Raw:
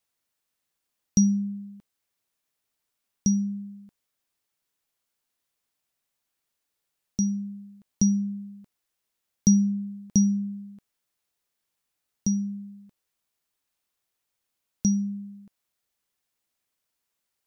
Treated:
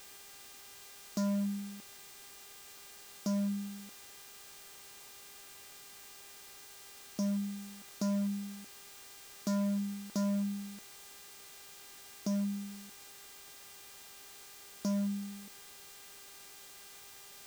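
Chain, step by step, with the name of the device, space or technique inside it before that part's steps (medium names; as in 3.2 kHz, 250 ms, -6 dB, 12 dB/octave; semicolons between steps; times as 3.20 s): aircraft radio (band-pass 330–2600 Hz; hard clipper -36.5 dBFS, distortion -5 dB; mains buzz 400 Hz, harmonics 22, -64 dBFS 0 dB/octave; white noise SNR 15 dB); trim +6.5 dB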